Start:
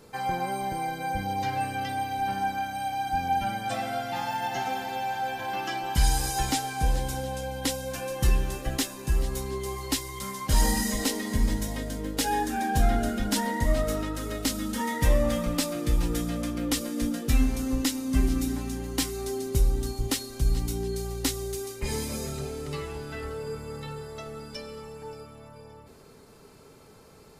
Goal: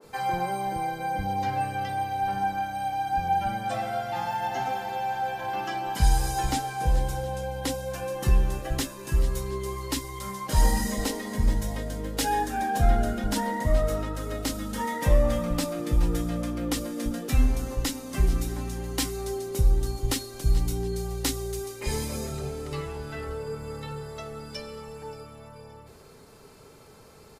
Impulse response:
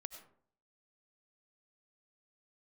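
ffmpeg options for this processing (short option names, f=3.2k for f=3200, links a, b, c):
-filter_complex "[0:a]asettb=1/sr,asplit=3[a][b][c];[a]atrim=end=8.804[d];[b]atrim=start=8.8:end=10.04,asetpts=PTS-STARTPTS,afade=t=in:d=0.004:c=qsin,afade=t=out:st=1.236:d=0.004:c=qsin,asuperstop=centerf=750:order=4:qfactor=6.4[e];[c]atrim=start=10.036[f];[d][e]acrossfade=d=0.004:c1=hsin:c2=qsin[g];[g][f]acrossfade=d=0.004:c1=qsin:c2=hsin,acrossover=split=250[h][i];[h]adelay=40[j];[j][i]amix=inputs=2:normalize=0,adynamicequalizer=threshold=0.00501:dfrequency=1600:dqfactor=0.7:tfrequency=1600:tqfactor=0.7:attack=5:release=100:ratio=0.375:range=3:mode=cutabove:tftype=highshelf,volume=2dB"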